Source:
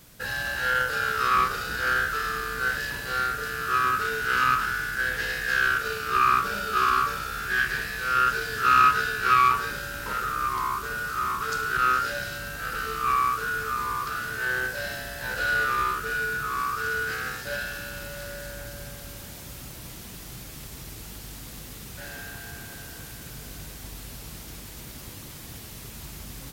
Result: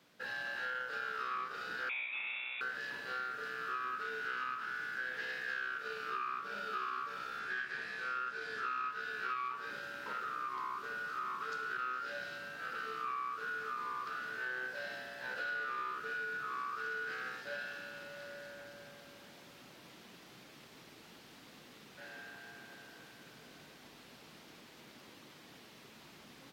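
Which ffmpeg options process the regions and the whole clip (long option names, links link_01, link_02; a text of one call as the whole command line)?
ffmpeg -i in.wav -filter_complex "[0:a]asettb=1/sr,asplit=3[link_01][link_02][link_03];[link_01]atrim=end=1.894[link_04];[link_02]atrim=start=1.89:end=2.61,asetpts=PTS-STARTPTS,afade=type=in:duration=0.004:curve=qsin,afade=type=out:start_time=0.716:duration=0.004:curve=qsin,highpass=140,lowpass=frequency=3300:width_type=q:width=0.5098,lowpass=frequency=3300:width_type=q:width=0.6013,lowpass=frequency=3300:width_type=q:width=0.9,lowpass=frequency=3300:width_type=q:width=2.563,afreqshift=-3900[link_05];[link_03]atrim=start=2.606[link_06];[link_04][link_05]acrossfade=duration=0.004:curve1=hsin:curve2=qsin[link_07];[link_07][link_06]acrossfade=duration=0.004:curve1=qsin:curve2=hsin,asettb=1/sr,asplit=3[link_08][link_09][link_10];[link_08]atrim=end=7.394[link_11];[link_09]atrim=start=7.39:end=8.91,asetpts=PTS-STARTPTS,afade=type=in:duration=0.004:curve=qsin,afade=type=out:start_time=1.516:duration=0.004:curve=qsin,lowpass=11000,bandreject=frequency=2900:width=26[link_12];[link_10]atrim=start=8.906[link_13];[link_11][link_12]acrossfade=duration=0.004:curve1=hsin:curve2=qsin[link_14];[link_14][link_13]acrossfade=duration=0.004:curve1=qsin:curve2=hsin,acrossover=split=170 4800:gain=0.0891 1 0.141[link_15][link_16][link_17];[link_15][link_16][link_17]amix=inputs=3:normalize=0,acompressor=threshold=-27dB:ratio=6,lowshelf=frequency=87:gain=-9,volume=-9dB" out.wav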